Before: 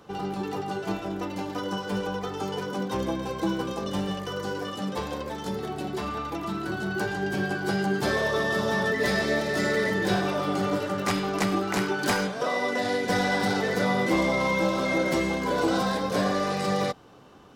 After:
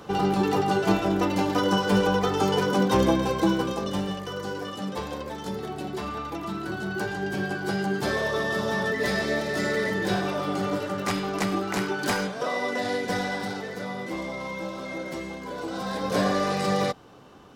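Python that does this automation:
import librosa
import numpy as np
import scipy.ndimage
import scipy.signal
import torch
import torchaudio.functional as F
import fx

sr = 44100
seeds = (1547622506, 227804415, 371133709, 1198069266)

y = fx.gain(x, sr, db=fx.line((3.06, 8.0), (4.19, -1.0), (12.98, -1.0), (13.73, -9.0), (15.71, -9.0), (16.13, 1.5)))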